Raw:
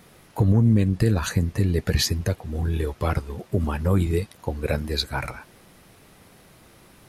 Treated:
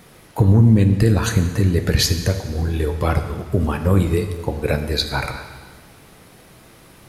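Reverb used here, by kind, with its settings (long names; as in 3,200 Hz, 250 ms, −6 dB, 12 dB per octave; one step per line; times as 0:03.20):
dense smooth reverb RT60 1.6 s, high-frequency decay 0.95×, DRR 7 dB
level +4.5 dB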